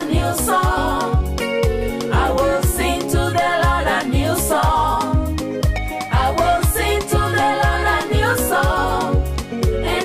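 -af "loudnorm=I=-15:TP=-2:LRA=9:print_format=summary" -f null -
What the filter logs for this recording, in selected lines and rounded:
Input Integrated:    -18.0 LUFS
Input True Peak:      -7.2 dBTP
Input LRA:             0.9 LU
Input Threshold:     -28.0 LUFS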